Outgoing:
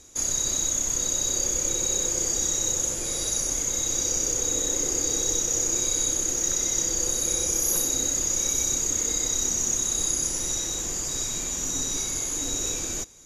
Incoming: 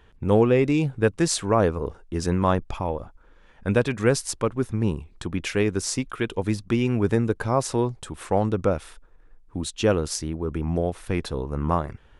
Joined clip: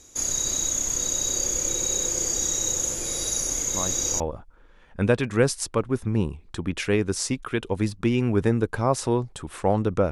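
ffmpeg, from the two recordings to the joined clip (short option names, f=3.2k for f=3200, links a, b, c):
-filter_complex "[1:a]asplit=2[a][b];[0:a]apad=whole_dur=10.11,atrim=end=10.11,atrim=end=4.202[c];[b]atrim=start=2.868:end=8.78[d];[a]atrim=start=2.41:end=2.87,asetpts=PTS-STARTPTS,volume=-11.5dB,afade=t=in:d=0.004:c=hsin,afade=t=out:st=0.456:d=0.004:c=hsin,adelay=3740[e];[c][d]acrossfade=d=0.004:c1=hsin:c2=hsin[f];[f][e]amix=inputs=2:normalize=0"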